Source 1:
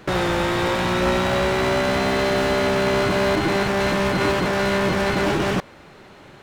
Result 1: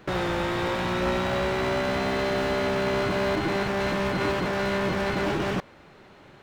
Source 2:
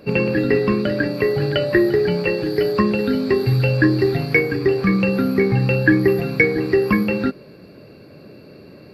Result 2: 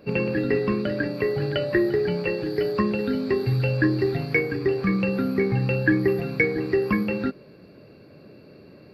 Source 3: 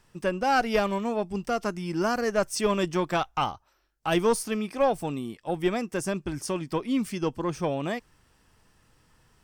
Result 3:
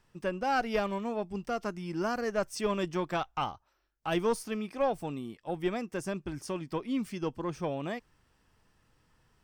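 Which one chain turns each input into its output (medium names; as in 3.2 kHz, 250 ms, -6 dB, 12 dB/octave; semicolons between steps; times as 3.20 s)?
peaking EQ 10 kHz -5 dB 1.5 oct; trim -5.5 dB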